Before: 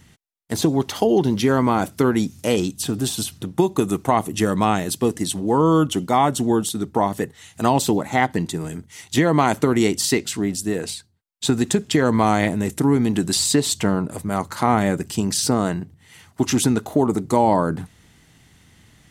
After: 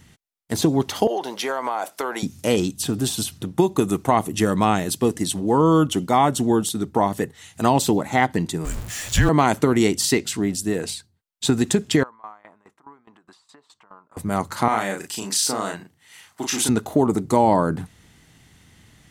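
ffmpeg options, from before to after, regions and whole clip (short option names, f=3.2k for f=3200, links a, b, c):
-filter_complex "[0:a]asettb=1/sr,asplit=3[a][b][c];[a]atrim=end=1.074[d];[b]atrim=start=1.07:end=2.23,asetpts=PTS-STARTPTS,afade=t=in:d=0.004:c=qsin,afade=t=out:st=1.156:d=0.004:c=qsin,highpass=f=680:t=q:w=1.8,acompressor=threshold=-20dB:ratio=6:attack=3.2:release=140:knee=1:detection=peak[e];[c]atrim=start=2.226[f];[d][e]acrossfade=d=0.004:c1=hsin:c2=qsin[g];[g][f]acrossfade=d=0.004:c1=qsin:c2=hsin,asettb=1/sr,asplit=3[h][i][j];[h]atrim=end=8.654[k];[i]atrim=start=8.65:end=9.29,asetpts=PTS-STARTPTS,afade=t=in:d=0.004:c=qsin,afade=t=out:st=0.636:d=0.004:c=qsin,aeval=exprs='val(0)+0.5*0.0355*sgn(val(0))':c=same,equalizer=f=7.3k:w=7.9:g=7,afreqshift=-200[l];[j]atrim=start=9.286[m];[k][l]acrossfade=d=0.004:c1=hsin:c2=qsin[n];[n][m]acrossfade=d=0.004:c1=qsin:c2=hsin,asettb=1/sr,asplit=3[o][p][q];[o]atrim=end=12.034[r];[p]atrim=start=12.03:end=14.17,asetpts=PTS-STARTPTS,afade=t=in:d=0.004:c=qsin,afade=t=out:st=2.136:d=0.004:c=qsin,acompressor=threshold=-21dB:ratio=5:attack=3.2:release=140:knee=1:detection=peak,bandpass=f=1.1k:t=q:w=3.5,aeval=exprs='val(0)*pow(10,-19*if(lt(mod(4.8*n/s,1),2*abs(4.8)/1000),1-mod(4.8*n/s,1)/(2*abs(4.8)/1000),(mod(4.8*n/s,1)-2*abs(4.8)/1000)/(1-2*abs(4.8)/1000))/20)':c=same[s];[q]atrim=start=14.166[t];[r][s]acrossfade=d=0.004:c1=hsin:c2=qsin[u];[u][t]acrossfade=d=0.004:c1=qsin:c2=hsin,asettb=1/sr,asplit=3[v][w][x];[v]atrim=end=14.684[y];[w]atrim=start=14.68:end=16.69,asetpts=PTS-STARTPTS,afade=t=in:d=0.004:c=qsin,afade=t=out:st=2.006:d=0.004:c=qsin,highpass=f=960:p=1,asplit=2[z][aa];[aa]adelay=36,volume=-3.5dB[ab];[z][ab]amix=inputs=2:normalize=0,atrim=end_sample=88641[ac];[x]atrim=start=16.686[ad];[y][ac]acrossfade=d=0.004:c1=hsin:c2=qsin[ae];[ae][ad]acrossfade=d=0.004:c1=qsin:c2=hsin"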